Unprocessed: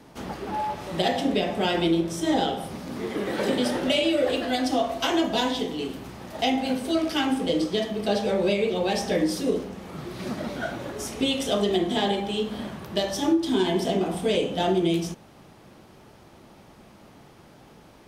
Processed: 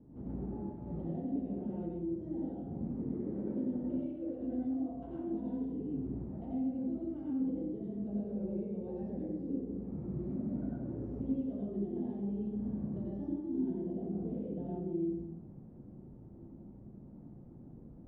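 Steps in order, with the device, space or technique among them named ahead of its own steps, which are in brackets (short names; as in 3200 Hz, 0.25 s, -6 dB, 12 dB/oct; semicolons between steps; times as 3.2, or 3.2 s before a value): television next door (compressor 6:1, threshold -32 dBFS, peak gain reduction 14.5 dB; LPF 260 Hz 12 dB/oct; reverb RT60 0.80 s, pre-delay 80 ms, DRR -5 dB); gain -3.5 dB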